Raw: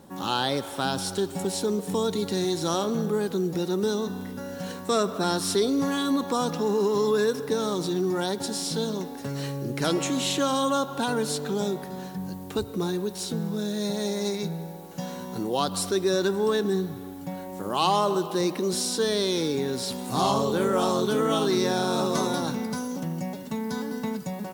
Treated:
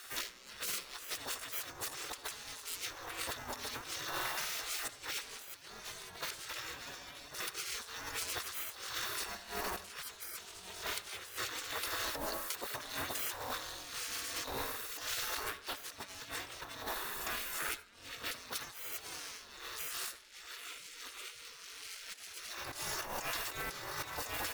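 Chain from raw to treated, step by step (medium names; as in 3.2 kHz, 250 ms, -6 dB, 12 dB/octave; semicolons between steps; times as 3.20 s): comb filter that takes the minimum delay 1.1 ms; spectral gate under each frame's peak -20 dB weak; peaking EQ 16 kHz -2.5 dB 1.5 oct; compressor with a negative ratio -49 dBFS, ratio -0.5; on a send: reverberation RT60 0.35 s, pre-delay 67 ms, DRR 15 dB; on the sum: trim +7 dB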